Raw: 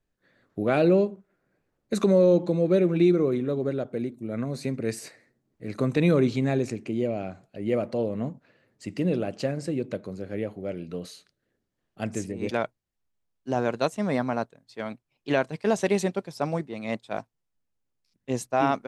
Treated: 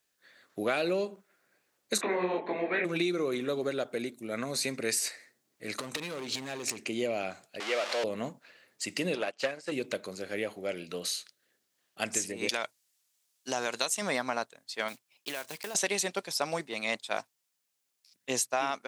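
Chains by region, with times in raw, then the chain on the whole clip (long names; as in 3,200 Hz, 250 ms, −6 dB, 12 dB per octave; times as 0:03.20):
0:01.97–0:02.84: ceiling on every frequency bin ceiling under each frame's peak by 20 dB + loudspeaker in its box 220–2,100 Hz, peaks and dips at 230 Hz +7 dB, 380 Hz +4 dB, 560 Hz −4 dB, 840 Hz −3 dB, 1,300 Hz −10 dB, 1,900 Hz +7 dB + micro pitch shift up and down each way 44 cents
0:05.76–0:06.85: downward compressor 10 to 1, threshold −29 dBFS + hard clipping −30.5 dBFS
0:07.60–0:08.04: converter with a step at zero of −30.5 dBFS + band-pass filter 560–4,300 Hz
0:09.15–0:09.72: mid-hump overdrive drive 16 dB, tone 2,700 Hz, clips at −14 dBFS + expander for the loud parts 2.5 to 1, over −39 dBFS
0:12.49–0:14.02: parametric band 8,100 Hz +7 dB 2.5 octaves + downward compressor 2 to 1, threshold −28 dBFS
0:14.88–0:15.75: one scale factor per block 5 bits + downward compressor 16 to 1, threshold −34 dBFS
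whole clip: high-pass filter 860 Hz 6 dB per octave; high-shelf EQ 2,500 Hz +11 dB; downward compressor 6 to 1, threshold −30 dBFS; level +4 dB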